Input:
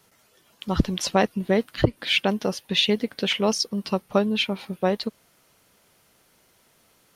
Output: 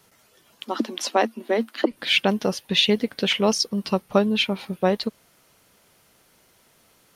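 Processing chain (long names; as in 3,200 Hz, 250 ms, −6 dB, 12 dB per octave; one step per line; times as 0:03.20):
0:00.64–0:01.91: Chebyshev high-pass with heavy ripple 220 Hz, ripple 3 dB
level +2 dB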